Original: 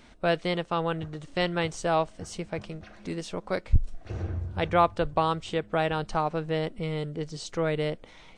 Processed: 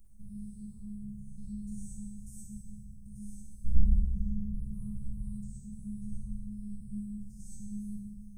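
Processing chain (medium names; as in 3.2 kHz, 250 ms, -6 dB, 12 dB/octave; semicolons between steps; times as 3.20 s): spectrogram pixelated in time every 100 ms; inverse Chebyshev band-stop 400–3300 Hz, stop band 70 dB; robot voice 208 Hz; reverberation RT60 1.4 s, pre-delay 44 ms, DRR -4.5 dB; trim +9.5 dB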